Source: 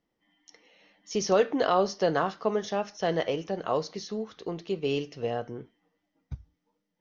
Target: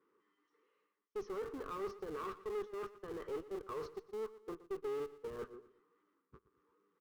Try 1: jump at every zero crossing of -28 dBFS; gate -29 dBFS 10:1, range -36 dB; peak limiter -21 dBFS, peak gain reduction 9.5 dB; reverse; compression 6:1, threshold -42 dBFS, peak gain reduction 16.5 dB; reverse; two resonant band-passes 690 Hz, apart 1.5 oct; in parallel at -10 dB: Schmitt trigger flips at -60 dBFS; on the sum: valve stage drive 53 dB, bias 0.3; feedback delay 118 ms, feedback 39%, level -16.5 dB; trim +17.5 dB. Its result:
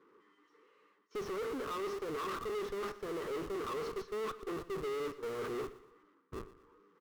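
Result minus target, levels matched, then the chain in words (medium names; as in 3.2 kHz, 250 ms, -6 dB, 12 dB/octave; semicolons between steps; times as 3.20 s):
jump at every zero crossing: distortion +10 dB; compression: peak gain reduction -6 dB
jump at every zero crossing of -39.5 dBFS; gate -29 dBFS 10:1, range -36 dB; peak limiter -21 dBFS, peak gain reduction 9 dB; reverse; compression 6:1, threshold -49.5 dBFS, peak gain reduction 22 dB; reverse; two resonant band-passes 690 Hz, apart 1.5 oct; in parallel at -10 dB: Schmitt trigger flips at -60 dBFS; on the sum: valve stage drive 53 dB, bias 0.3; feedback delay 118 ms, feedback 39%, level -16.5 dB; trim +17.5 dB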